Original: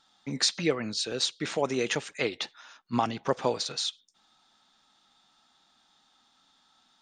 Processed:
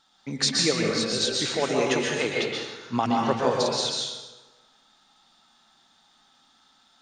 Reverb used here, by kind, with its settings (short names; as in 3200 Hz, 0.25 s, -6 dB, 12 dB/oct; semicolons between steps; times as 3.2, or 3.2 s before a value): plate-style reverb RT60 1.2 s, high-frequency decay 0.75×, pre-delay 0.11 s, DRR -2 dB; gain +1 dB